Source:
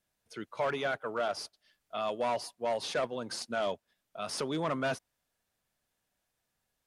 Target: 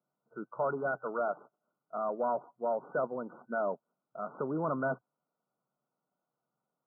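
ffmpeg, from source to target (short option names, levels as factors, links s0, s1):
-af "afftfilt=real='re*between(b*sr/4096,120,1500)':imag='im*between(b*sr/4096,120,1500)':win_size=4096:overlap=0.75"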